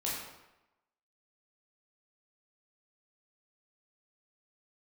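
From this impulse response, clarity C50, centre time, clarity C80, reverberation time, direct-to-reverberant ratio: 0.5 dB, 69 ms, 3.5 dB, 0.95 s, -6.0 dB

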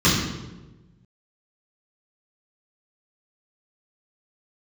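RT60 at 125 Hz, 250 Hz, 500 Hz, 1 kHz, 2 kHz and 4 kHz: 1.7, 1.4, 1.3, 0.95, 0.85, 0.80 s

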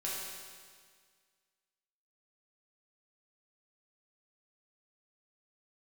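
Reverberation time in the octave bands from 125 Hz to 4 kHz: 1.8, 1.8, 1.8, 1.8, 1.8, 1.8 s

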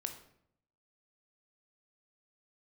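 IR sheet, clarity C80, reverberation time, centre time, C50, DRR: 12.5 dB, 0.70 s, 14 ms, 9.0 dB, 5.5 dB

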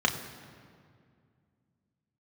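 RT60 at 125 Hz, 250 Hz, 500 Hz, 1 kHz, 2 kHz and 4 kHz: 3.1, 3.0, 2.3, 2.0, 1.8, 1.4 s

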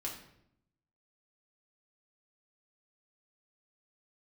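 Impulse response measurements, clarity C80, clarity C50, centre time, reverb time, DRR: 9.5 dB, 6.5 dB, 28 ms, 0.75 s, -3.0 dB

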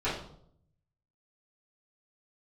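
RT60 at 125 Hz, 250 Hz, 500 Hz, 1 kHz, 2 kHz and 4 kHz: 1.2, 0.85, 0.75, 0.60, 0.45, 0.50 s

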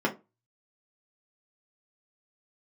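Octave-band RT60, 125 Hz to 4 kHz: 0.30, 0.30, 0.25, 0.25, 0.20, 0.15 s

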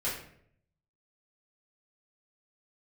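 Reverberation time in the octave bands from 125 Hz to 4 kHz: 1.0, 0.80, 0.75, 0.55, 0.60, 0.45 s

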